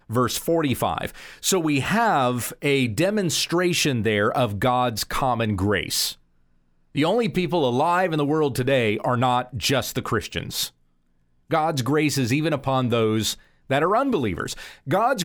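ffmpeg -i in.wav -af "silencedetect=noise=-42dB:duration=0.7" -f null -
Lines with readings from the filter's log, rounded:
silence_start: 6.14
silence_end: 6.95 | silence_duration: 0.81
silence_start: 10.69
silence_end: 11.50 | silence_duration: 0.81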